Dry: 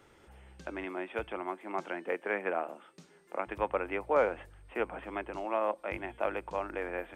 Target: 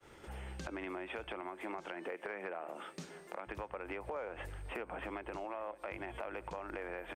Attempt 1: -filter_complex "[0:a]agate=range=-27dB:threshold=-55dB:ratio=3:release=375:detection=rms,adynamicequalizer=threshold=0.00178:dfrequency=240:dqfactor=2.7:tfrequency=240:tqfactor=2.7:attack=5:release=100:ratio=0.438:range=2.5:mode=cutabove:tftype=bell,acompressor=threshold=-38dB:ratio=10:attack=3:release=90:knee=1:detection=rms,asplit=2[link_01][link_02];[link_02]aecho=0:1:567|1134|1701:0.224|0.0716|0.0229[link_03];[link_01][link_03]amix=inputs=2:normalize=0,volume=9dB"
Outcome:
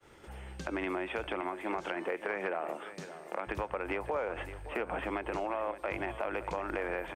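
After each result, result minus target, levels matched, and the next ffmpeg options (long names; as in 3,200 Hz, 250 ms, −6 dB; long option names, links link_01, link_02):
downward compressor: peak gain reduction −7.5 dB; echo-to-direct +7.5 dB
-filter_complex "[0:a]agate=range=-27dB:threshold=-55dB:ratio=3:release=375:detection=rms,adynamicequalizer=threshold=0.00178:dfrequency=240:dqfactor=2.7:tfrequency=240:tqfactor=2.7:attack=5:release=100:ratio=0.438:range=2.5:mode=cutabove:tftype=bell,acompressor=threshold=-46.5dB:ratio=10:attack=3:release=90:knee=1:detection=rms,asplit=2[link_01][link_02];[link_02]aecho=0:1:567|1134|1701:0.224|0.0716|0.0229[link_03];[link_01][link_03]amix=inputs=2:normalize=0,volume=9dB"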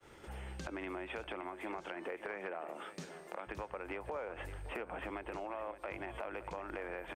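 echo-to-direct +7.5 dB
-filter_complex "[0:a]agate=range=-27dB:threshold=-55dB:ratio=3:release=375:detection=rms,adynamicequalizer=threshold=0.00178:dfrequency=240:dqfactor=2.7:tfrequency=240:tqfactor=2.7:attack=5:release=100:ratio=0.438:range=2.5:mode=cutabove:tftype=bell,acompressor=threshold=-46.5dB:ratio=10:attack=3:release=90:knee=1:detection=rms,asplit=2[link_01][link_02];[link_02]aecho=0:1:567|1134:0.0944|0.0302[link_03];[link_01][link_03]amix=inputs=2:normalize=0,volume=9dB"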